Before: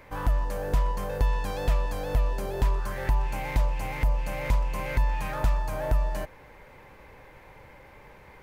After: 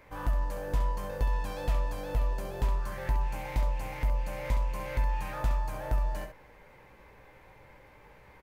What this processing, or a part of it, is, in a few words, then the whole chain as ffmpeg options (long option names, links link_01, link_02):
slapback doubling: -filter_complex "[0:a]asplit=3[link_01][link_02][link_03];[link_02]adelay=17,volume=-8.5dB[link_04];[link_03]adelay=67,volume=-8dB[link_05];[link_01][link_04][link_05]amix=inputs=3:normalize=0,volume=-6dB"